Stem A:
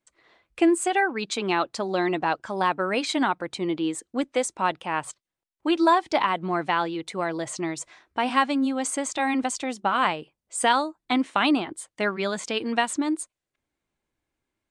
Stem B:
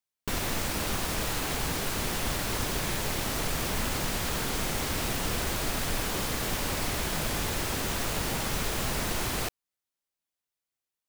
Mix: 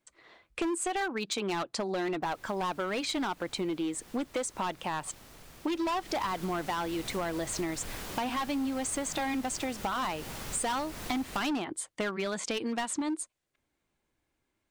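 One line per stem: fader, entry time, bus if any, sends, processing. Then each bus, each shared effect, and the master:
+2.5 dB, 0.00 s, no send, hard clipping −21.5 dBFS, distortion −9 dB
0:05.71 −22 dB → 0:06.27 −9.5 dB, 1.95 s, no send, no processing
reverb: not used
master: downward compressor 6 to 1, threshold −30 dBFS, peak gain reduction 9.5 dB

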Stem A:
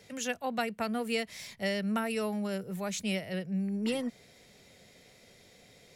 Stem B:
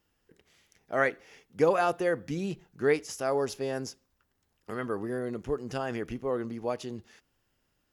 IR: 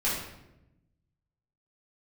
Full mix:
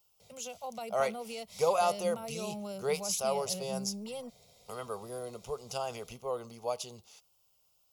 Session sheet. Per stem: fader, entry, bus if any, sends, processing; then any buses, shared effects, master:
−1.0 dB, 0.20 s, no send, brickwall limiter −27 dBFS, peak gain reduction 8.5 dB
+1.0 dB, 0.00 s, no send, spectral tilt +2.5 dB per octave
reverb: not used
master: phaser with its sweep stopped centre 720 Hz, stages 4

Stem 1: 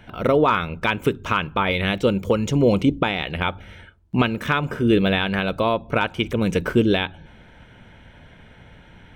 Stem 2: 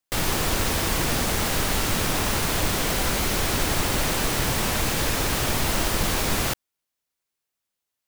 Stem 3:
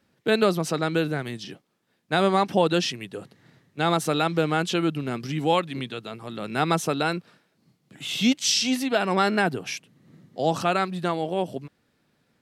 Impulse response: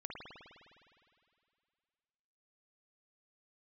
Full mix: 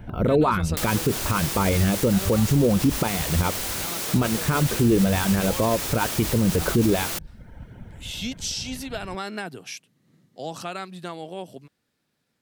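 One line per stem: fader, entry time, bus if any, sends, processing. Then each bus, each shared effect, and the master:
+2.5 dB, 0.00 s, no bus, no send, parametric band 3,200 Hz −10.5 dB 2.3 octaves; reverb reduction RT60 0.72 s; low-shelf EQ 220 Hz +8.5 dB
−2.0 dB, 0.65 s, bus A, no send, high-pass filter 170 Hz
−8.5 dB, 0.00 s, bus A, no send, no processing
bus A: 0.0 dB, high-shelf EQ 3,600 Hz +8.5 dB; downward compressor 4 to 1, threshold −27 dBFS, peak gain reduction 8 dB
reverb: not used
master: brickwall limiter −11 dBFS, peak gain reduction 11.5 dB

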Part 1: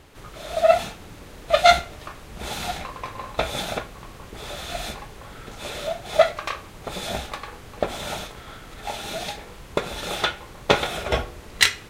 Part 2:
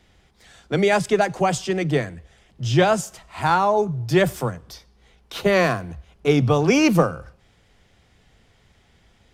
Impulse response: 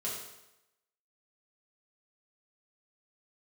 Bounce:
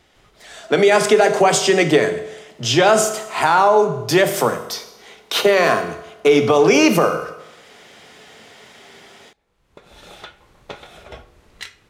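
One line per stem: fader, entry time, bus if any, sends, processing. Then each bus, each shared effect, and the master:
−10.5 dB, 0.00 s, no send, high-shelf EQ 10,000 Hz −5.5 dB; downward compressor 1.5 to 1, threshold −30 dBFS, peak gain reduction 8 dB; automatic ducking −24 dB, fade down 1.70 s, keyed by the second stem
0.0 dB, 0.00 s, send −7.5 dB, downward compressor 2.5 to 1, threshold −21 dBFS, peak gain reduction 7.5 dB; high-pass filter 320 Hz 12 dB per octave; automatic gain control gain up to 15 dB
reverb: on, RT60 0.90 s, pre-delay 4 ms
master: brickwall limiter −4 dBFS, peak gain reduction 6 dB

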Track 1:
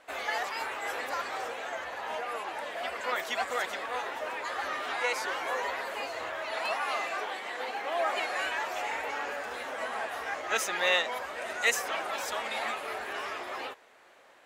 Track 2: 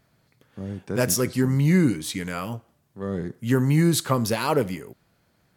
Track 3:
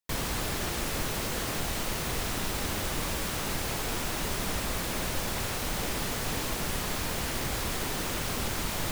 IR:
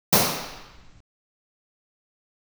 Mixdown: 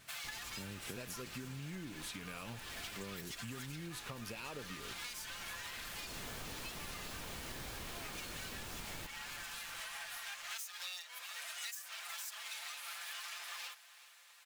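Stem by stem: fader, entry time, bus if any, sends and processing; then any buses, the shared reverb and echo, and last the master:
−6.0 dB, 0.00 s, no send, echo send −22 dB, lower of the sound and its delayed copy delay 5.8 ms; high-pass filter 960 Hz 12 dB per octave; spectral tilt +4.5 dB per octave
−2.0 dB, 0.00 s, no send, no echo send, parametric band 2,600 Hz +13 dB 0.35 octaves; downward compressor 6 to 1, threshold −29 dBFS, peak gain reduction 13.5 dB
0:05.97 −16 dB → 0:06.29 −4 dB, 0.15 s, no send, echo send −17 dB, no processing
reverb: not used
echo: repeating echo 370 ms, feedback 48%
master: notch filter 2,000 Hz, Q 20; downward compressor 12 to 1, threshold −42 dBFS, peak gain reduction 19.5 dB

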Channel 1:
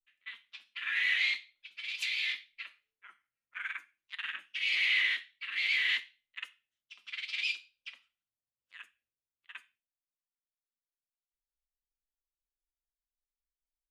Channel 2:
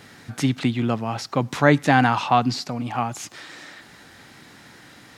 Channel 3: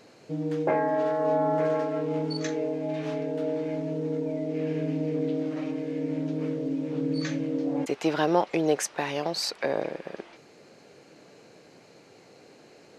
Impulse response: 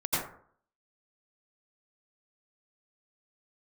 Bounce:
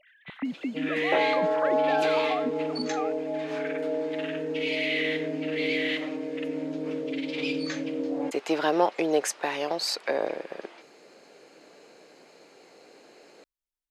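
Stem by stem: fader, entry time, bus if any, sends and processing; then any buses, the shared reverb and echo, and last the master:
−2.5 dB, 0.00 s, send −19 dB, no processing
−5.0 dB, 0.00 s, no send, three sine waves on the formant tracks; downward compressor, threshold −24 dBFS, peak gain reduction 12.5 dB
+1.0 dB, 0.45 s, no send, high-pass filter 300 Hz 12 dB per octave; notch filter 5,800 Hz, Q 17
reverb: on, RT60 0.55 s, pre-delay 77 ms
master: no processing

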